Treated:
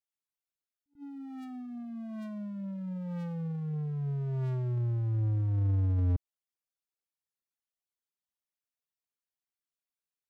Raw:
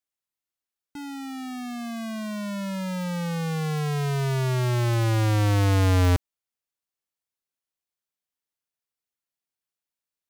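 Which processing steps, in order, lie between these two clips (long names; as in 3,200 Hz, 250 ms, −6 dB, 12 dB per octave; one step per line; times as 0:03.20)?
spectral envelope exaggerated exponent 2
echo ahead of the sound 93 ms −21 dB
level that may rise only so fast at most 300 dB per second
level −7.5 dB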